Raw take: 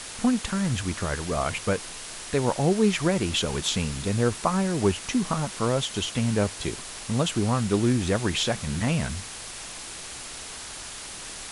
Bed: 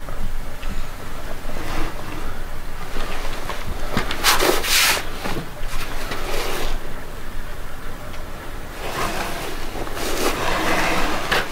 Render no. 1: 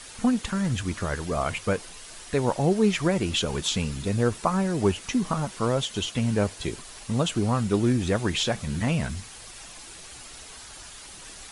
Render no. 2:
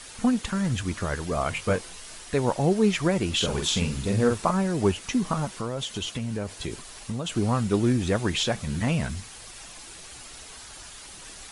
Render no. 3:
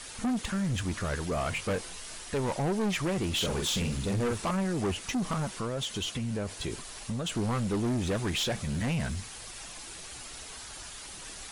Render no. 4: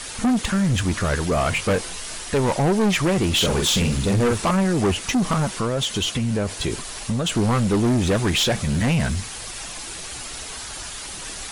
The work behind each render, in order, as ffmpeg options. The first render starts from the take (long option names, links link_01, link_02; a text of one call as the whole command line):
ffmpeg -i in.wav -af "afftdn=noise_reduction=8:noise_floor=-39" out.wav
ffmpeg -i in.wav -filter_complex "[0:a]asettb=1/sr,asplit=3[link_01][link_02][link_03];[link_01]atrim=end=1.534[link_04];[link_02]atrim=start=1.53:end=2.18,asetpts=PTS-STARTPTS,afade=type=in:duration=0.004:curve=qsin,afade=type=out:start_time=0.646:duration=0.004:curve=qsin,asplit=2[link_05][link_06];[link_06]adelay=22,volume=-6dB[link_07];[link_05][link_07]amix=inputs=2:normalize=0,atrim=end_sample=28665[link_08];[link_03]atrim=start=2.176[link_09];[link_04][link_08]acrossfade=duration=0.004:curve1=hsin:curve2=qsin[link_10];[link_10][link_09]acrossfade=duration=0.004:curve1=qsin:curve2=hsin,asettb=1/sr,asplit=3[link_11][link_12][link_13];[link_11]atrim=end=3.364[link_14];[link_12]atrim=start=3.36:end=4.51,asetpts=PTS-STARTPTS,afade=type=in:duration=0.004:curve=qsin,afade=type=out:start_time=1.146:duration=0.004:curve=qsin,asplit=2[link_15][link_16];[link_16]adelay=46,volume=-4dB[link_17];[link_15][link_17]amix=inputs=2:normalize=0,atrim=end_sample=50715[link_18];[link_13]atrim=start=4.506[link_19];[link_14][link_18]acrossfade=duration=0.004:curve1=hsin:curve2=qsin[link_20];[link_20][link_19]acrossfade=duration=0.004:curve1=qsin:curve2=hsin,asettb=1/sr,asplit=3[link_21][link_22][link_23];[link_21]atrim=end=5.574[link_24];[link_22]atrim=start=5.57:end=7.32,asetpts=PTS-STARTPTS,afade=type=in:duration=0.004:curve=qsin,afade=type=out:start_time=1.746:duration=0.004:curve=qsin,acompressor=threshold=-26dB:ratio=5:attack=3.2:release=140:knee=1:detection=peak[link_25];[link_23]atrim=start=7.316[link_26];[link_24][link_25]acrossfade=duration=0.004:curve1=hsin:curve2=qsin[link_27];[link_27][link_26]acrossfade=duration=0.004:curve1=qsin:curve2=hsin" out.wav
ffmpeg -i in.wav -af "asoftclip=type=tanh:threshold=-25.5dB" out.wav
ffmpeg -i in.wav -af "volume=10dB" out.wav